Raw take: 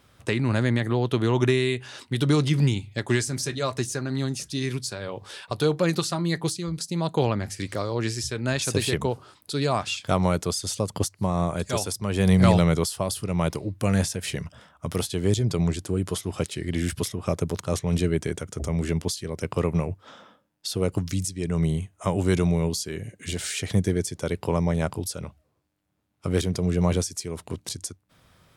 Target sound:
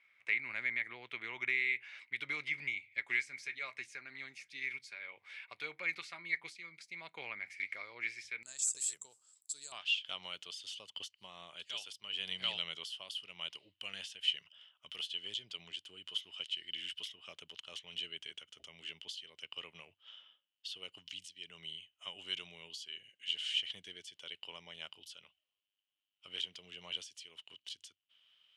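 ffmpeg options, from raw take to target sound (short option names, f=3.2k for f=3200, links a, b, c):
-af "asetnsamples=n=441:p=0,asendcmd='8.43 bandpass f 7600;9.72 bandpass f 3000',bandpass=f=2.2k:t=q:w=16:csg=0,volume=8.5dB"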